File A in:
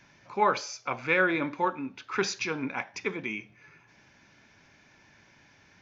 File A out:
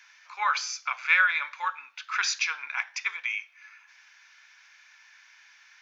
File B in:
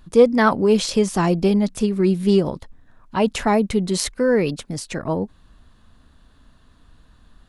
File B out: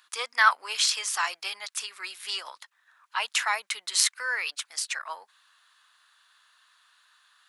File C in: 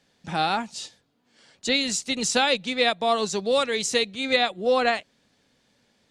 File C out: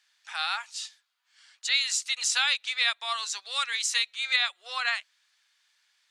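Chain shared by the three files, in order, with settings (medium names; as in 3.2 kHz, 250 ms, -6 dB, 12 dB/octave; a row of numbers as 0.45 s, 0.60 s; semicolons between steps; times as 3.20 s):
high-pass 1.2 kHz 24 dB/octave; normalise loudness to -27 LUFS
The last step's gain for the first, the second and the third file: +5.5 dB, +2.5 dB, -0.5 dB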